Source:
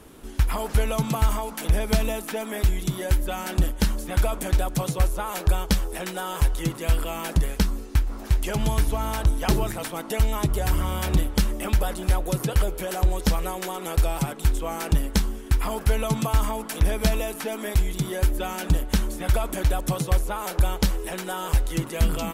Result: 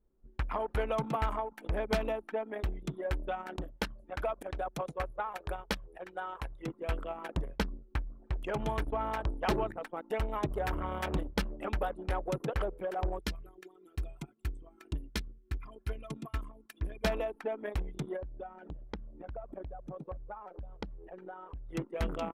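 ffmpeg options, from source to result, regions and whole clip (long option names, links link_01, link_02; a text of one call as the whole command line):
ffmpeg -i in.wav -filter_complex "[0:a]asettb=1/sr,asplit=3[link_01][link_02][link_03];[link_01]atrim=end=3.564[link_04];[link_02]atrim=start=3.56:end=6.68,asetpts=PTS-STARTPTS,afade=type=in:duration=0.004:curve=qsin,afade=type=out:start_time=3.116:duration=0.004:curve=qsin,lowshelf=frequency=270:gain=-7,aeval=exprs='val(0)+0.00447*(sin(2*PI*50*n/s)+sin(2*PI*2*50*n/s)/2+sin(2*PI*3*50*n/s)/3+sin(2*PI*4*50*n/s)/4+sin(2*PI*5*50*n/s)/5)':channel_layout=same[link_05];[link_03]atrim=start=6.676[link_06];[link_04][link_05]acrossfade=duration=0.004:curve1=hsin:curve2=qsin[link_07];[link_07][link_06]acrossfade=duration=0.004:curve1=qsin:curve2=hsin,asettb=1/sr,asplit=3[link_08][link_09][link_10];[link_08]atrim=end=13.194[link_11];[link_09]atrim=start=13.19:end=17.04,asetpts=PTS-STARTPTS,afade=type=in:duration=0.004:curve=qsin,afade=type=out:start_time=3.846:duration=0.004:curve=qsin,highpass=56,equalizer=frequency=690:width=0.64:gain=-12,aecho=1:1:2.9:0.44,atrim=end_sample=169785[link_12];[link_10]atrim=start=17.036[link_13];[link_11][link_12]acrossfade=duration=0.004:curve1=hsin:curve2=qsin[link_14];[link_14][link_13]acrossfade=duration=0.004:curve1=qsin:curve2=hsin,asettb=1/sr,asplit=3[link_15][link_16][link_17];[link_15]atrim=end=18.164[link_18];[link_16]atrim=start=18.16:end=21.69,asetpts=PTS-STARTPTS,afade=type=in:duration=0.004:curve=qsin,afade=type=out:start_time=3.526:duration=0.004:curve=qsin,highshelf=frequency=6200:gain=-6.5,acompressor=threshold=-30dB:ratio=2.5:attack=3.2:release=140:knee=1:detection=peak[link_19];[link_17]atrim=start=21.686[link_20];[link_18][link_19]acrossfade=duration=0.004:curve1=hsin:curve2=qsin[link_21];[link_21][link_20]acrossfade=duration=0.004:curve1=qsin:curve2=hsin,anlmdn=158,bass=frequency=250:gain=-12,treble=frequency=4000:gain=-14,volume=-2dB" out.wav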